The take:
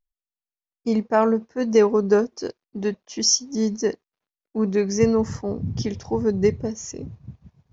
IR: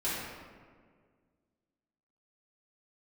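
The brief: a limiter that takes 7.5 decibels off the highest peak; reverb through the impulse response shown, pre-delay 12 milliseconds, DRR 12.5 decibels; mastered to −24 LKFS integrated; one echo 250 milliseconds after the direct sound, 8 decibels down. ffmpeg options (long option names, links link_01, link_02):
-filter_complex "[0:a]alimiter=limit=-12.5dB:level=0:latency=1,aecho=1:1:250:0.398,asplit=2[link_01][link_02];[1:a]atrim=start_sample=2205,adelay=12[link_03];[link_02][link_03]afir=irnorm=-1:irlink=0,volume=-20dB[link_04];[link_01][link_04]amix=inputs=2:normalize=0"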